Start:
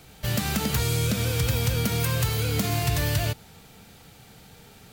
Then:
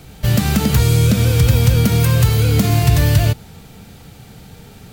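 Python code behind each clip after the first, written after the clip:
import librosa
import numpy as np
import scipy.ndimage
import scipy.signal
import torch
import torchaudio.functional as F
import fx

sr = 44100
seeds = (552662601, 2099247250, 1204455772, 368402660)

y = fx.low_shelf(x, sr, hz=370.0, db=8.0)
y = y * 10.0 ** (5.5 / 20.0)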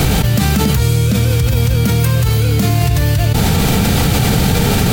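y = fx.env_flatten(x, sr, amount_pct=100)
y = y * 10.0 ** (-4.0 / 20.0)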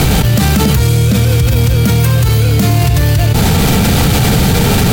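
y = fx.fold_sine(x, sr, drive_db=4, ceiling_db=-1.0)
y = y * 10.0 ** (-3.5 / 20.0)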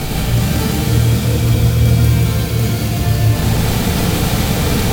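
y = fx.rev_shimmer(x, sr, seeds[0], rt60_s=3.4, semitones=7, shimmer_db=-8, drr_db=-5.0)
y = y * 10.0 ** (-11.5 / 20.0)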